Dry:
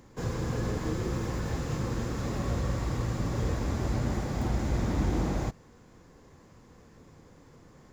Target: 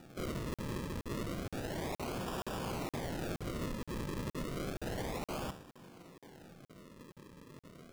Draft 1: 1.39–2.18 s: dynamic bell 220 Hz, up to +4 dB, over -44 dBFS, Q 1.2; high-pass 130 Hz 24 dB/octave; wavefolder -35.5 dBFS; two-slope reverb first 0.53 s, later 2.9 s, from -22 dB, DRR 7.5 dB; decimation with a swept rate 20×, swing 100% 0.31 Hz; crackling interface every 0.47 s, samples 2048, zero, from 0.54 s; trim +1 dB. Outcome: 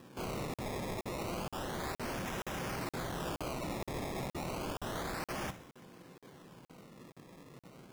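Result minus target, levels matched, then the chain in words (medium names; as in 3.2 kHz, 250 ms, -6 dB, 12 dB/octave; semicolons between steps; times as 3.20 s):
decimation with a swept rate: distortion -6 dB
1.39–2.18 s: dynamic bell 220 Hz, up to +4 dB, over -44 dBFS, Q 1.2; high-pass 130 Hz 24 dB/octave; wavefolder -35.5 dBFS; two-slope reverb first 0.53 s, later 2.9 s, from -22 dB, DRR 7.5 dB; decimation with a swept rate 41×, swing 100% 0.31 Hz; crackling interface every 0.47 s, samples 2048, zero, from 0.54 s; trim +1 dB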